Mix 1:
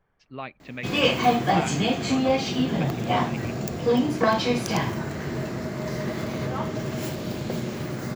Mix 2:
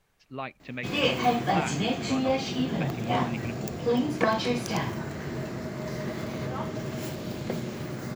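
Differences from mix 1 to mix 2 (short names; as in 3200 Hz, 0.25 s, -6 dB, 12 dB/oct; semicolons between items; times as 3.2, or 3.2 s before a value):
first sound -4.0 dB; second sound: remove polynomial smoothing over 41 samples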